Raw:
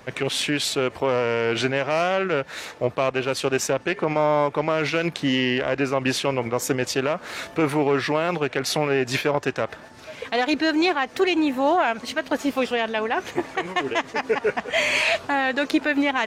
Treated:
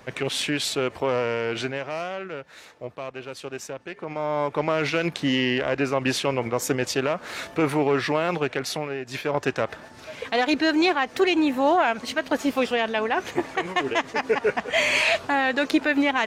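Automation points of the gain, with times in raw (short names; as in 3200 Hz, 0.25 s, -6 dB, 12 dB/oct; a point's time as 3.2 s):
1.2 s -2 dB
2.4 s -12 dB
3.97 s -12 dB
4.61 s -1 dB
8.49 s -1 dB
9.06 s -11.5 dB
9.41 s 0 dB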